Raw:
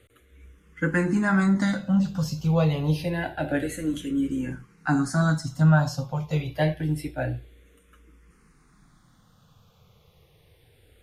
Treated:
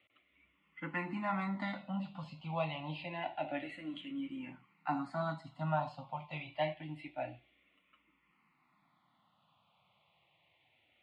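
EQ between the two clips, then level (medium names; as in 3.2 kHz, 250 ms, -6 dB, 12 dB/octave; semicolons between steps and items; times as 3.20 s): distance through air 230 m; cabinet simulation 470–9200 Hz, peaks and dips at 500 Hz -7 dB, 790 Hz -3 dB, 1.2 kHz -7 dB, 3.6 kHz -4 dB, 6.4 kHz -9 dB; static phaser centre 1.6 kHz, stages 6; +1.0 dB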